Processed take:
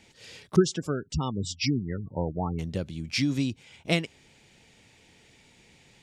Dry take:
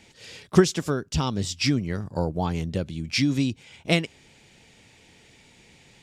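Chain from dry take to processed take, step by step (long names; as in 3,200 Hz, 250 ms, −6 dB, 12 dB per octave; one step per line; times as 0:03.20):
0:00.56–0:02.59: gate on every frequency bin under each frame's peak −20 dB strong
level −3.5 dB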